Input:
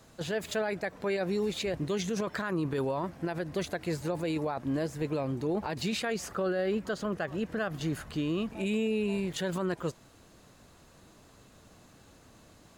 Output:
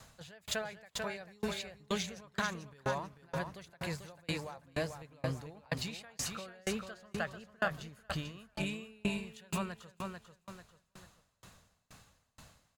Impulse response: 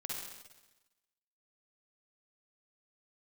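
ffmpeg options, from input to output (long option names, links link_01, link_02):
-af "equalizer=frequency=330:width_type=o:width=1.2:gain=-14,aecho=1:1:442|884|1326|1768:0.501|0.17|0.0579|0.0197,aeval=exprs='val(0)*pow(10,-34*if(lt(mod(2.1*n/s,1),2*abs(2.1)/1000),1-mod(2.1*n/s,1)/(2*abs(2.1)/1000),(mod(2.1*n/s,1)-2*abs(2.1)/1000)/(1-2*abs(2.1)/1000))/20)':channel_layout=same,volume=6dB"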